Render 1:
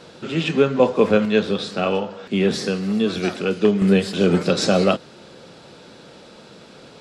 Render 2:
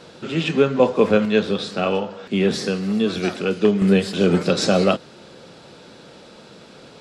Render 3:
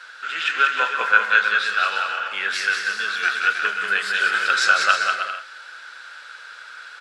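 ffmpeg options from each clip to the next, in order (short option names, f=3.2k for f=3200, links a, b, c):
-af anull
-af "highpass=f=1.5k:t=q:w=7.7,aecho=1:1:190|313.5|393.8|446|479.9:0.631|0.398|0.251|0.158|0.1,volume=-1dB"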